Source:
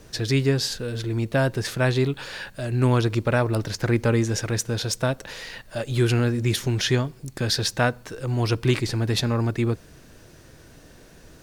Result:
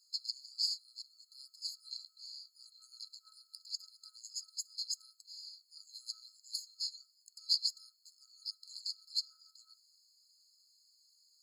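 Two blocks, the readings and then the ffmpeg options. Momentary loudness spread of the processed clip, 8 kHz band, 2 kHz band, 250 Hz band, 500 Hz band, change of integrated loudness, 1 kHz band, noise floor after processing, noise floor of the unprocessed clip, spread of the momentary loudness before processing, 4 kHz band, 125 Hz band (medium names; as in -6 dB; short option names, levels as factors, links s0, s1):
20 LU, -13.5 dB, under -40 dB, under -40 dB, under -40 dB, -15.5 dB, under -40 dB, -73 dBFS, -49 dBFS, 11 LU, -7.5 dB, under -40 dB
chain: -filter_complex "[0:a]afftfilt=real='re*(1-between(b*sr/4096,1300,4100))':imag='im*(1-between(b*sr/4096,1300,4100))':win_size=4096:overlap=0.75,acrossover=split=580 5900:gain=0.1 1 0.178[s0][s1][s2];[s0][s1][s2]amix=inputs=3:normalize=0,afftfilt=real='re*eq(mod(floor(b*sr/1024/1300),2),1)':imag='im*eq(mod(floor(b*sr/1024/1300),2),1)':win_size=1024:overlap=0.75,volume=0.841"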